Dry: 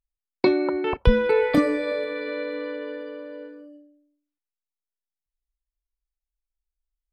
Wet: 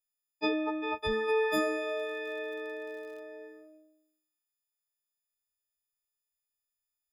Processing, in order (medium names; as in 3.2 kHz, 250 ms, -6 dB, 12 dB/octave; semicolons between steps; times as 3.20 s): partials quantised in pitch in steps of 6 st; tone controls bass -13 dB, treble -1 dB; transient shaper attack -3 dB, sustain +3 dB; 1.81–3.21 s: crackle 74 per s -39 dBFS; trim -7.5 dB